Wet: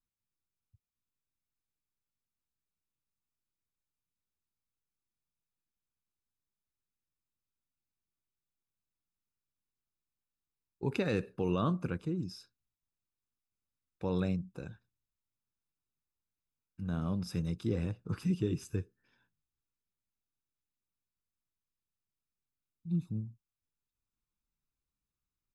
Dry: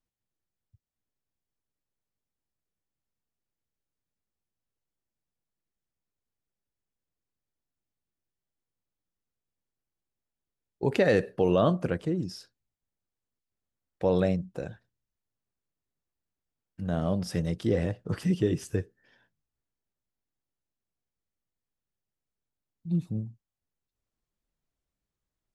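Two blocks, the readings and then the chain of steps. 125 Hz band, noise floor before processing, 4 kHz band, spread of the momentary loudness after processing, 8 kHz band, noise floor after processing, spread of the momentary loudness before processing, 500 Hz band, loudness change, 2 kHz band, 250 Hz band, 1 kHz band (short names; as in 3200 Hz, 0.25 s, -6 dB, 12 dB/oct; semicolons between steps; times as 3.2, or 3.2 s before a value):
-4.5 dB, under -85 dBFS, -6.5 dB, 14 LU, -7.0 dB, under -85 dBFS, 15 LU, -11.0 dB, -7.0 dB, -9.0 dB, -5.5 dB, -7.5 dB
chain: comb 0.8 ms, depth 61%; gain -8 dB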